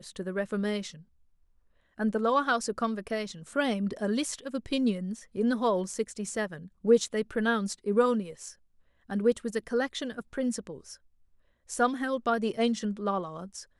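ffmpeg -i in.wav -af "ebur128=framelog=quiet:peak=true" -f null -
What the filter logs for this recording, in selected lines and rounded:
Integrated loudness:
  I:         -29.7 LUFS
  Threshold: -40.3 LUFS
Loudness range:
  LRA:         3.4 LU
  Threshold: -50.3 LUFS
  LRA low:   -32.1 LUFS
  LRA high:  -28.6 LUFS
True peak:
  Peak:      -10.9 dBFS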